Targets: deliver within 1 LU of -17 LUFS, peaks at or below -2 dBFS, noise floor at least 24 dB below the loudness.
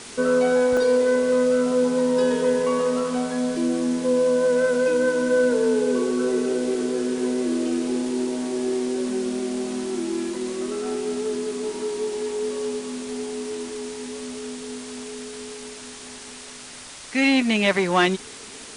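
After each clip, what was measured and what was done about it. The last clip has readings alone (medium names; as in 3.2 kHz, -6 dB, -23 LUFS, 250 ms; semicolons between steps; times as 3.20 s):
dropouts 1; longest dropout 2.1 ms; noise floor -40 dBFS; noise floor target -47 dBFS; loudness -23.0 LUFS; peak level -7.0 dBFS; loudness target -17.0 LUFS
-> interpolate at 0.77 s, 2.1 ms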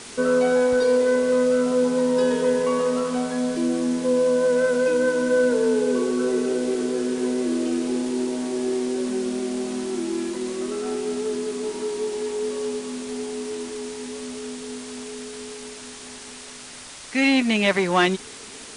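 dropouts 0; noise floor -40 dBFS; noise floor target -47 dBFS
-> noise reduction 7 dB, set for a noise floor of -40 dBFS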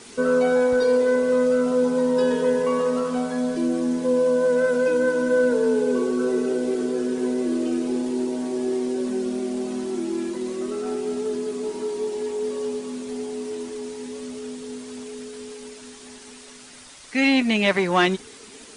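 noise floor -44 dBFS; noise floor target -47 dBFS
-> noise reduction 6 dB, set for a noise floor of -44 dBFS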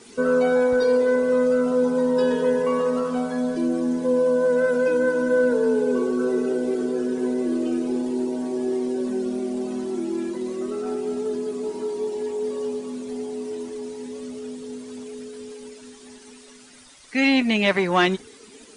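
noise floor -47 dBFS; loudness -23.0 LUFS; peak level -7.0 dBFS; loudness target -17.0 LUFS
-> trim +6 dB; peak limiter -2 dBFS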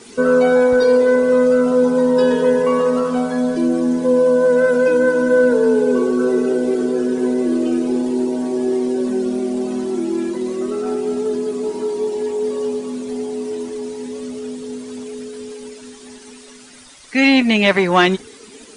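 loudness -17.0 LUFS; peak level -2.0 dBFS; noise floor -41 dBFS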